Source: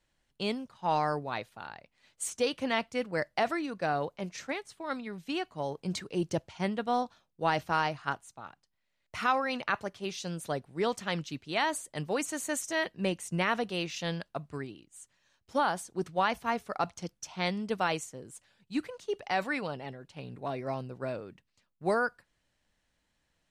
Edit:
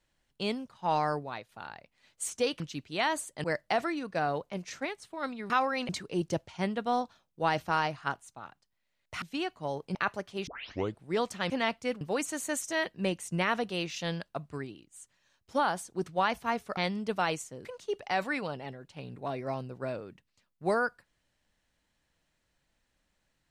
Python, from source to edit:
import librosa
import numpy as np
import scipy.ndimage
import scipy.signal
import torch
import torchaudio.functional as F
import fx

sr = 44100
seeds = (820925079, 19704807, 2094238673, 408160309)

y = fx.edit(x, sr, fx.fade_out_to(start_s=1.15, length_s=0.34, floor_db=-10.5),
    fx.swap(start_s=2.6, length_s=0.51, other_s=11.17, other_length_s=0.84),
    fx.swap(start_s=5.17, length_s=0.73, other_s=9.23, other_length_s=0.39),
    fx.tape_start(start_s=10.14, length_s=0.53),
    fx.cut(start_s=16.77, length_s=0.62),
    fx.cut(start_s=18.27, length_s=0.58), tone=tone)